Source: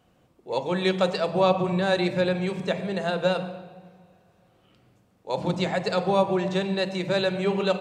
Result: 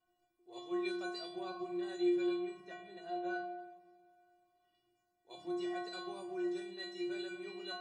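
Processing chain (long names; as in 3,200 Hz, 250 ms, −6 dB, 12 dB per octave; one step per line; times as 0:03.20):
0:02.36–0:03.58: high-shelf EQ 4,300 Hz −11 dB
stiff-string resonator 350 Hz, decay 0.65 s, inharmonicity 0.008
level +3 dB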